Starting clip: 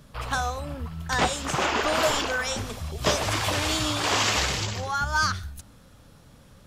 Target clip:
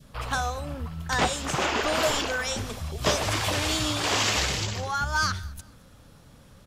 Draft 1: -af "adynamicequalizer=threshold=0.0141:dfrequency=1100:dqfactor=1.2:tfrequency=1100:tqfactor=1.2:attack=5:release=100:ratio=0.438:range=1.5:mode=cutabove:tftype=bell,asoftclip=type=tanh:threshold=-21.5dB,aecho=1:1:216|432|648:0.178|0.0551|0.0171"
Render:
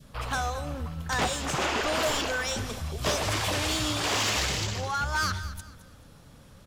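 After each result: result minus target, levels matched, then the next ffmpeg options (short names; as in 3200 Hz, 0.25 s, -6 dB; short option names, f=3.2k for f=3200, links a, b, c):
soft clip: distortion +18 dB; echo-to-direct +10.5 dB
-af "adynamicequalizer=threshold=0.0141:dfrequency=1100:dqfactor=1.2:tfrequency=1100:tqfactor=1.2:attack=5:release=100:ratio=0.438:range=1.5:mode=cutabove:tftype=bell,asoftclip=type=tanh:threshold=-10dB,aecho=1:1:216|432|648:0.178|0.0551|0.0171"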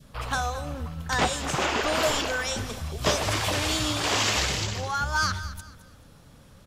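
echo-to-direct +10.5 dB
-af "adynamicequalizer=threshold=0.0141:dfrequency=1100:dqfactor=1.2:tfrequency=1100:tqfactor=1.2:attack=5:release=100:ratio=0.438:range=1.5:mode=cutabove:tftype=bell,asoftclip=type=tanh:threshold=-10dB,aecho=1:1:216|432:0.0531|0.0165"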